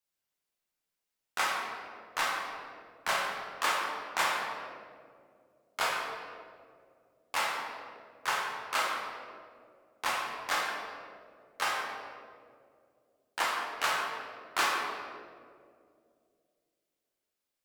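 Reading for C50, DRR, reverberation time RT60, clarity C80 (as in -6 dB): 1.0 dB, -3.5 dB, 2.3 s, 2.5 dB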